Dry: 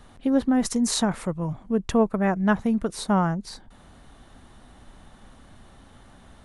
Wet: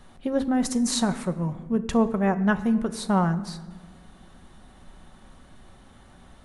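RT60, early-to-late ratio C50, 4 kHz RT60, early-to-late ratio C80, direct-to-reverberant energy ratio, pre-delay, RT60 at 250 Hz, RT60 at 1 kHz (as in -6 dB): 1.4 s, 14.0 dB, 0.90 s, 15.5 dB, 8.5 dB, 5 ms, 2.5 s, 1.2 s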